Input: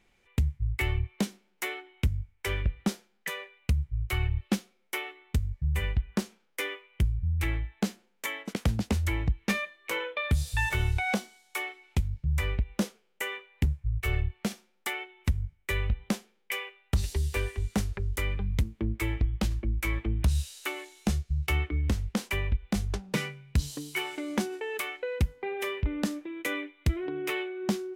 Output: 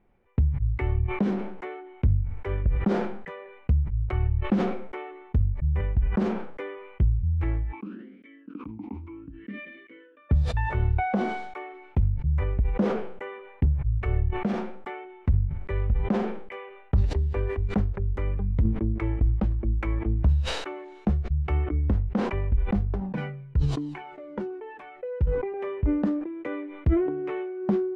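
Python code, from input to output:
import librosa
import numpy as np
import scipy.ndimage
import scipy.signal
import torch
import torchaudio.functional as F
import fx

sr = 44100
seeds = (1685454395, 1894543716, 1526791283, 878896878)

y = fx.vowel_sweep(x, sr, vowels='i-u', hz=fx.line((7.71, 0.98), (10.29, 0.42)), at=(7.71, 10.29), fade=0.02)
y = fx.comb_cascade(y, sr, direction='falling', hz=1.2, at=(23.0, 25.54))
y = scipy.signal.sosfilt(scipy.signal.butter(2, 1000.0, 'lowpass', fs=sr, output='sos'), y)
y = fx.sustainer(y, sr, db_per_s=50.0)
y = F.gain(torch.from_numpy(y), 3.0).numpy()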